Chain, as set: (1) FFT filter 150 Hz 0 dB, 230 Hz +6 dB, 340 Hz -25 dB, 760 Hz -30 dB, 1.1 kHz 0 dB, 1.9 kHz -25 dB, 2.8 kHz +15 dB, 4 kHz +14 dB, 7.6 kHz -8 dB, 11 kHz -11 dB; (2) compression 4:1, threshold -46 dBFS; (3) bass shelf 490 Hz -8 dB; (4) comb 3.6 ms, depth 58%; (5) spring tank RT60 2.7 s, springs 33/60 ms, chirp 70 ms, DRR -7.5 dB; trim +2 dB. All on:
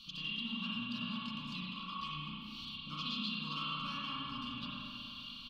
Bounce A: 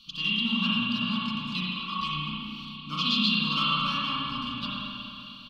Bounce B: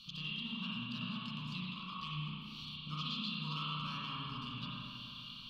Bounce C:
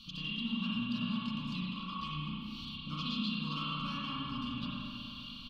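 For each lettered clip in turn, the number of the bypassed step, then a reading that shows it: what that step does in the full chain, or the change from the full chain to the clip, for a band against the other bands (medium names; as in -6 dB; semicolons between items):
2, mean gain reduction 8.0 dB; 4, 125 Hz band +6.5 dB; 3, 125 Hz band +6.0 dB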